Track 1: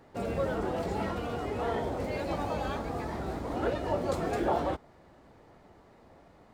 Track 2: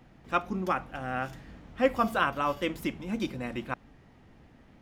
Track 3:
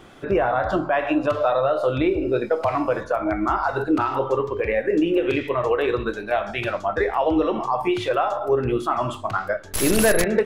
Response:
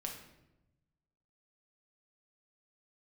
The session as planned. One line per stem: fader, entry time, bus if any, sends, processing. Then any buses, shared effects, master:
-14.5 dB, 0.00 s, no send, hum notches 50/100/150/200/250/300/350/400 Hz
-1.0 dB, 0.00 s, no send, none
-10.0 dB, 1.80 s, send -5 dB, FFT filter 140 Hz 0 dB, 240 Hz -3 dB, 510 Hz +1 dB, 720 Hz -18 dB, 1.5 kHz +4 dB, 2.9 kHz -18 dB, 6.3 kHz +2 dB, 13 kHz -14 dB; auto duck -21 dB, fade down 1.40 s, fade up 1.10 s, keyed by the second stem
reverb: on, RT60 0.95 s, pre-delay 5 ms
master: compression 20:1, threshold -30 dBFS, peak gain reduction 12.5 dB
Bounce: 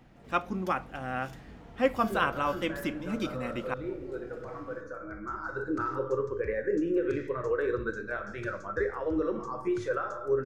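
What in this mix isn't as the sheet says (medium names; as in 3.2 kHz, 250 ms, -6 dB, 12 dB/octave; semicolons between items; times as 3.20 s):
stem 1 -14.5 dB -> -25.0 dB; master: missing compression 20:1, threshold -30 dBFS, peak gain reduction 12.5 dB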